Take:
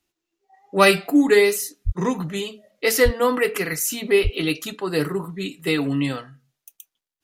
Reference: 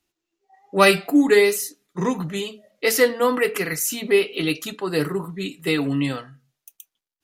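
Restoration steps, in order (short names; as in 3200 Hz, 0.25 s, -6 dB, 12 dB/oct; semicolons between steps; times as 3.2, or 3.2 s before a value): de-plosive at 1.85/3.04/4.23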